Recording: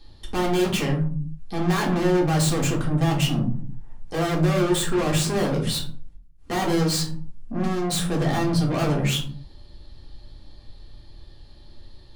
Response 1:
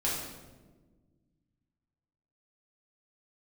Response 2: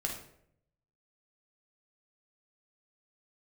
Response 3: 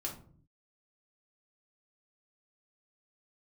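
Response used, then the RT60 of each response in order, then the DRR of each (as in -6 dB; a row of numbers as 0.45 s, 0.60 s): 3; 1.4 s, 0.70 s, 0.50 s; -6.5 dB, 0.0 dB, -2.0 dB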